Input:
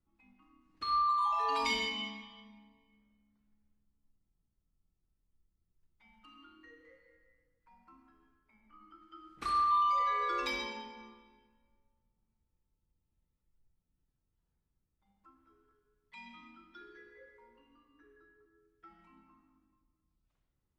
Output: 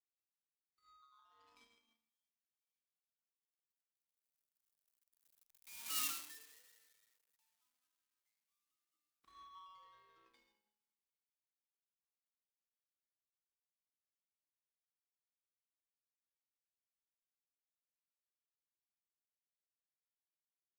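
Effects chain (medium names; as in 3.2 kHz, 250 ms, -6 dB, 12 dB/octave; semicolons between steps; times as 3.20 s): zero-crossing glitches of -38.5 dBFS; Doppler pass-by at 6.01 s, 19 m/s, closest 2.3 m; power-law waveshaper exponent 2; trim +15 dB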